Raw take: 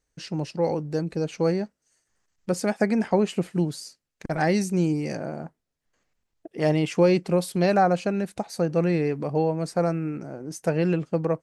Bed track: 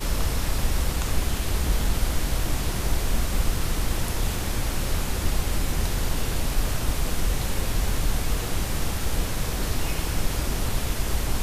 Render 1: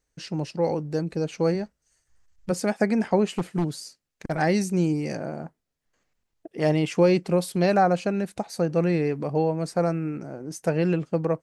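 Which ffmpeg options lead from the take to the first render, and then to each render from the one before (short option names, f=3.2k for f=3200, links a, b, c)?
-filter_complex "[0:a]asplit=3[a][b][c];[a]afade=t=out:st=1.54:d=0.02[d];[b]asubboost=boost=9:cutoff=100,afade=t=in:st=1.54:d=0.02,afade=t=out:st=2.5:d=0.02[e];[c]afade=t=in:st=2.5:d=0.02[f];[d][e][f]amix=inputs=3:normalize=0,asettb=1/sr,asplit=3[g][h][i];[g]atrim=end=3.294[j];[h]atrim=start=3.29:end=4.34,asetpts=PTS-STARTPTS,afade=t=in:d=0.004:c=qsin,afade=t=out:st=1.046:d=0.004:c=qsin,aeval=exprs='0.141*(abs(mod(val(0)/0.141+3,4)-2)-1)':c=same[k];[i]atrim=start=4.336[l];[j][k]acrossfade=d=0.004:c1=hsin:c2=qsin[m];[m][l]acrossfade=d=0.004:c1=qsin:c2=hsin"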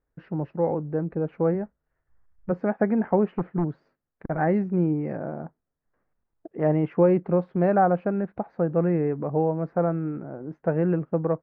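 -af "lowpass=f=1.6k:w=0.5412,lowpass=f=1.6k:w=1.3066"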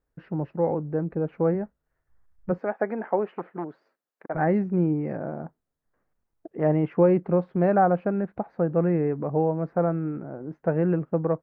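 -filter_complex "[0:a]asettb=1/sr,asplit=3[a][b][c];[a]atrim=end=2.584[d];[b]atrim=start=2.58:end=4.35,asetpts=PTS-STARTPTS,afade=t=in:d=0.004:c=qsin,afade=t=out:st=1.766:d=0.004:c=qsin,highpass=400[e];[c]atrim=start=4.346[f];[d][e]acrossfade=d=0.004:c1=hsin:c2=qsin[g];[g][f]acrossfade=d=0.004:c1=qsin:c2=hsin"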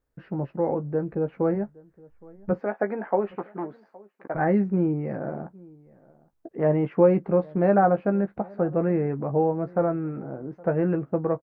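-filter_complex "[0:a]asplit=2[a][b];[b]adelay=15,volume=-8dB[c];[a][c]amix=inputs=2:normalize=0,asplit=2[d][e];[e]adelay=816.3,volume=-24dB,highshelf=f=4k:g=-18.4[f];[d][f]amix=inputs=2:normalize=0"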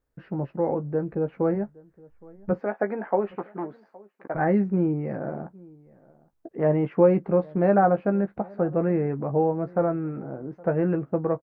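-af anull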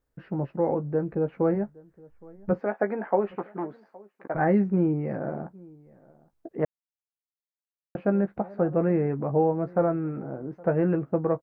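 -filter_complex "[0:a]asplit=3[a][b][c];[a]atrim=end=6.65,asetpts=PTS-STARTPTS,afade=t=out:st=6.646:d=0.004:c=hsin[d];[b]atrim=start=6.65:end=7.95,asetpts=PTS-STARTPTS,volume=0[e];[c]atrim=start=7.95,asetpts=PTS-STARTPTS,afade=t=in:d=0.004:c=hsin[f];[d][e][f]concat=n=3:v=0:a=1"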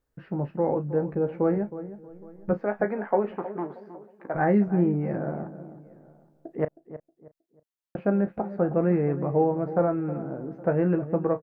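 -filter_complex "[0:a]asplit=2[a][b];[b]adelay=34,volume=-13.5dB[c];[a][c]amix=inputs=2:normalize=0,asplit=2[d][e];[e]adelay=316,lowpass=f=1.3k:p=1,volume=-13dB,asplit=2[f][g];[g]adelay=316,lowpass=f=1.3k:p=1,volume=0.32,asplit=2[h][i];[i]adelay=316,lowpass=f=1.3k:p=1,volume=0.32[j];[d][f][h][j]amix=inputs=4:normalize=0"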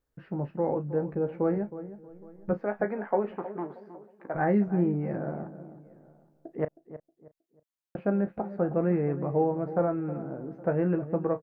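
-af "volume=-3dB"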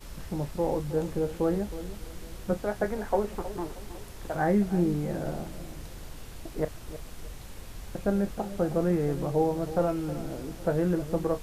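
-filter_complex "[1:a]volume=-17.5dB[a];[0:a][a]amix=inputs=2:normalize=0"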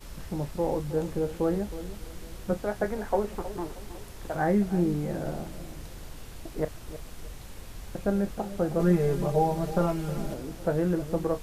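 -filter_complex "[0:a]asettb=1/sr,asplit=3[a][b][c];[a]atrim=end=8.794[d];[b]atrim=start=8.79:end=10.34,asetpts=PTS-STARTPTS,afade=t=in:d=0.004:c=qsin,afade=t=out:st=1.546:d=0.004:c=qsin,aecho=1:1:5:0.98,atrim=end_sample=68355[e];[c]atrim=start=10.336[f];[d][e]acrossfade=d=0.004:c1=hsin:c2=qsin[g];[g][f]acrossfade=d=0.004:c1=qsin:c2=hsin"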